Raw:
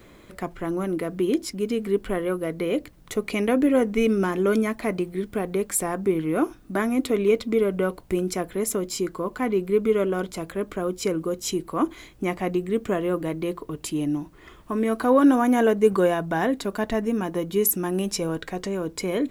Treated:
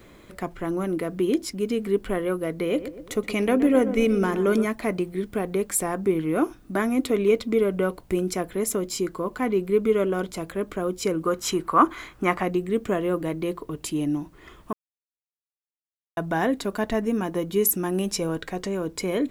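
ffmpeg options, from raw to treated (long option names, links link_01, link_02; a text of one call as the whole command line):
ffmpeg -i in.wav -filter_complex "[0:a]asettb=1/sr,asplit=3[link_01][link_02][link_03];[link_01]atrim=end=2.624[link_04];[link_02]atrim=start=2.62:end=4.65,asetpts=PTS-STARTPTS,afade=type=in:duration=0.004:curve=qsin,afade=type=out:start_time=2.026:duration=0.004:curve=qsin,asplit=2[link_05][link_06];[link_06]adelay=122,lowpass=frequency=1300:poles=1,volume=-11dB,asplit=2[link_07][link_08];[link_08]adelay=122,lowpass=frequency=1300:poles=1,volume=0.54,asplit=2[link_09][link_10];[link_10]adelay=122,lowpass=frequency=1300:poles=1,volume=0.54,asplit=2[link_11][link_12];[link_12]adelay=122,lowpass=frequency=1300:poles=1,volume=0.54,asplit=2[link_13][link_14];[link_14]adelay=122,lowpass=frequency=1300:poles=1,volume=0.54,asplit=2[link_15][link_16];[link_16]adelay=122,lowpass=frequency=1300:poles=1,volume=0.54[link_17];[link_05][link_07][link_09][link_11][link_13][link_15][link_17]amix=inputs=7:normalize=0,atrim=end_sample=89523[link_18];[link_03]atrim=start=4.646[link_19];[link_04][link_18]acrossfade=duration=0.004:curve1=hsin:curve2=qsin[link_20];[link_20][link_19]acrossfade=duration=0.004:curve1=qsin:curve2=hsin,asettb=1/sr,asplit=3[link_21][link_22][link_23];[link_21]atrim=end=11.254[link_24];[link_22]atrim=start=11.25:end=12.43,asetpts=PTS-STARTPTS,afade=type=in:duration=0.004:curve=qsin,afade=type=out:start_time=1.176:duration=0.004:curve=qsin,equalizer=frequency=1300:width_type=o:width=1.3:gain=13.5[link_25];[link_23]atrim=start=12.426[link_26];[link_24][link_25]acrossfade=duration=0.004:curve1=hsin:curve2=qsin[link_27];[link_27][link_26]acrossfade=duration=0.004:curve1=qsin:curve2=hsin,asplit=3[link_28][link_29][link_30];[link_28]atrim=end=14.73,asetpts=PTS-STARTPTS,afade=type=out:start_time=14.726:duration=0.004:curve=hsin[link_31];[link_29]atrim=start=14.73:end=16.17,asetpts=PTS-STARTPTS,volume=0[link_32];[link_30]atrim=start=16.17,asetpts=PTS-STARTPTS,afade=type=in:duration=0.004:curve=hsin[link_33];[link_31][link_32][link_33]concat=n=3:v=0:a=1" out.wav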